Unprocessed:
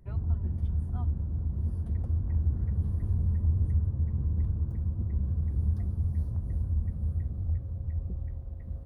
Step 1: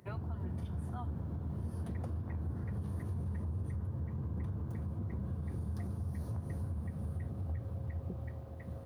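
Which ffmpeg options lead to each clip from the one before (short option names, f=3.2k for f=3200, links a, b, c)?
-af "highpass=f=94:w=0.5412,highpass=f=94:w=1.3066,lowshelf=f=400:g=-11,alimiter=level_in=17.5dB:limit=-24dB:level=0:latency=1:release=106,volume=-17.5dB,volume=10.5dB"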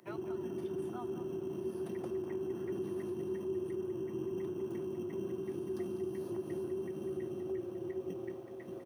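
-filter_complex "[0:a]acrossover=split=160|320|580[a][b][c][d];[a]afreqshift=-460[e];[b]acrusher=samples=15:mix=1:aa=0.000001[f];[e][f][c][d]amix=inputs=4:normalize=0,aecho=1:1:198:0.299"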